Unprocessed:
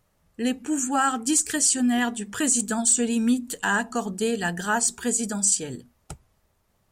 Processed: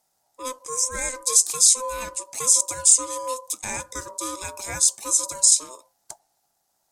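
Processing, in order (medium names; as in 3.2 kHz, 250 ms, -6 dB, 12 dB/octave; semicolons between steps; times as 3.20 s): resonant high shelf 3.8 kHz +12 dB, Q 1.5; ring modulator 770 Hz; trim -5.5 dB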